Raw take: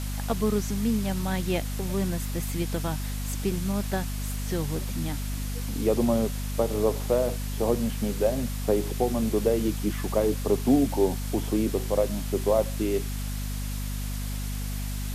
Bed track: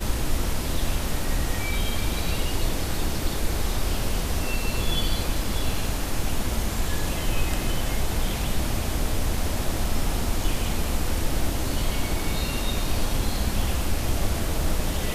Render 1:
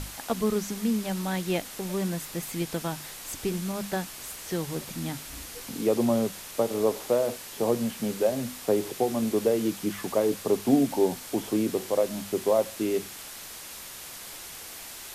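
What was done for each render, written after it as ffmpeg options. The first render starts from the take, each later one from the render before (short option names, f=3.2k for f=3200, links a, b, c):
-af "bandreject=f=50:t=h:w=6,bandreject=f=100:t=h:w=6,bandreject=f=150:t=h:w=6,bandreject=f=200:t=h:w=6,bandreject=f=250:t=h:w=6"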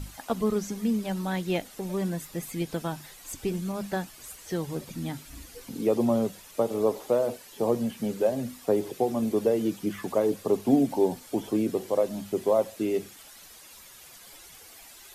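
-af "afftdn=nr=11:nf=-42"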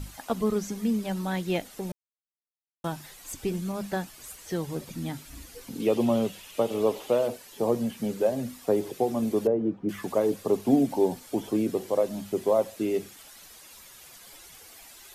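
-filter_complex "[0:a]asettb=1/sr,asplit=3[a][b][c];[a]atrim=end=5.804[d];[b]atrim=start=5.8:end=7.28,asetpts=PTS-STARTPTS,afade=t=in:d=0.004:c=qsin,afade=t=out:st=1.476:d=0.004:c=qsin,equalizer=f=2.9k:w=2:g=10[e];[c]atrim=start=7.276[f];[d][e]acrossfade=d=0.004:c1=hsin:c2=qsin[g];[g][f]acrossfade=d=0.004:c1=qsin:c2=hsin,asettb=1/sr,asplit=3[h][i][j];[h]atrim=end=9.474[k];[i]atrim=start=9.47:end=9.89,asetpts=PTS-STARTPTS,afade=t=in:d=0.004:c=qsin,afade=t=out:st=0.416:d=0.004:c=qsin,lowpass=1k[l];[j]atrim=start=9.886[m];[k][l]acrossfade=d=0.004:c1=hsin:c2=qsin[n];[n][m]acrossfade=d=0.004:c1=qsin:c2=hsin,asplit=3[o][p][q];[o]atrim=end=1.92,asetpts=PTS-STARTPTS,afade=t=out:st=1.916:d=0.004:c=hsin[r];[p]atrim=start=1.92:end=2.84,asetpts=PTS-STARTPTS,volume=0[s];[q]atrim=start=2.84,asetpts=PTS-STARTPTS,afade=t=in:d=0.004:c=hsin[t];[r][s][t]concat=n=3:v=0:a=1"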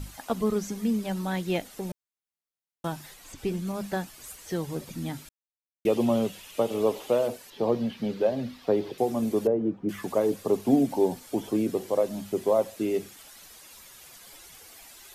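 -filter_complex "[0:a]asettb=1/sr,asplit=3[a][b][c];[a]atrim=end=3.144[d];[b]atrim=start=3.14:end=3.67,asetpts=PTS-STARTPTS,afade=t=in:d=0.004:c=qsin,afade=t=out:st=0.526:d=0.004:c=qsin,acrossover=split=5100[e][f];[f]acompressor=threshold=-50dB:ratio=4:attack=1:release=60[g];[e][g]amix=inputs=2:normalize=0[h];[c]atrim=start=3.666[i];[d][h]acrossfade=d=0.004:c1=hsin:c2=qsin[j];[j][i]acrossfade=d=0.004:c1=qsin:c2=hsin,asettb=1/sr,asplit=3[k][l][m];[k]atrim=end=7.504[n];[l]atrim=start=7.5:end=8.98,asetpts=PTS-STARTPTS,afade=t=in:d=0.004:c=qsin,afade=t=out:st=1.476:d=0.004:c=qsin,highshelf=f=5.8k:t=q:w=1.5:g=-12[o];[m]atrim=start=8.976[p];[n][o]acrossfade=d=0.004:c1=hsin:c2=qsin[q];[q][p]acrossfade=d=0.004:c1=qsin:c2=hsin,asplit=3[r][s][t];[r]atrim=end=5.29,asetpts=PTS-STARTPTS,afade=t=out:st=5.286:d=0.004:c=hsin[u];[s]atrim=start=5.29:end=5.85,asetpts=PTS-STARTPTS,volume=0[v];[t]atrim=start=5.85,asetpts=PTS-STARTPTS,afade=t=in:d=0.004:c=hsin[w];[u][v][w]concat=n=3:v=0:a=1"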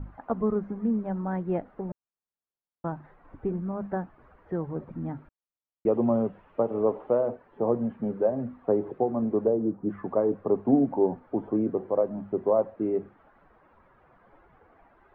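-af "lowpass=f=1.4k:w=0.5412,lowpass=f=1.4k:w=1.3066"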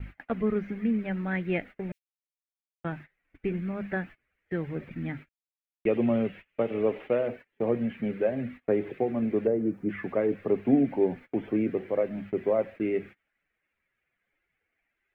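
-af "highshelf=f=1.5k:t=q:w=3:g=14,agate=range=-26dB:threshold=-42dB:ratio=16:detection=peak"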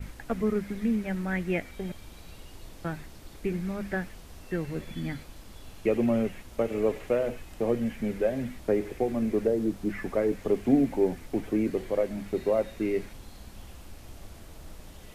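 -filter_complex "[1:a]volume=-21dB[a];[0:a][a]amix=inputs=2:normalize=0"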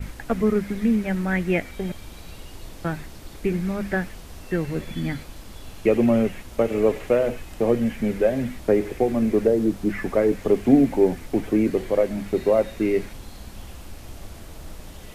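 -af "volume=6.5dB"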